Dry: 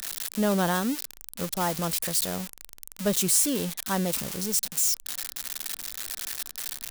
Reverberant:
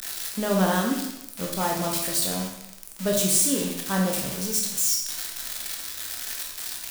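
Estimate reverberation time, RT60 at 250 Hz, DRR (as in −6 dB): 0.85 s, 0.80 s, −0.5 dB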